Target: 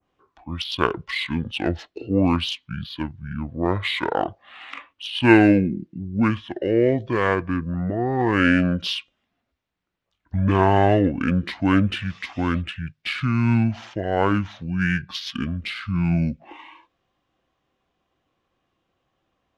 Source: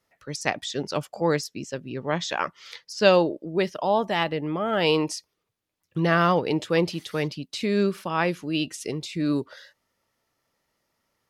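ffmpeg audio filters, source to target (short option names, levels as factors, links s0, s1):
-af "adynamicequalizer=threshold=0.00501:dfrequency=6500:dqfactor=0.85:tfrequency=6500:tqfactor=0.85:attack=5:release=100:ratio=0.375:range=3:mode=boostabove:tftype=bell,adynamicsmooth=sensitivity=5:basefreq=7200,asetrate=25442,aresample=44100,volume=1.41"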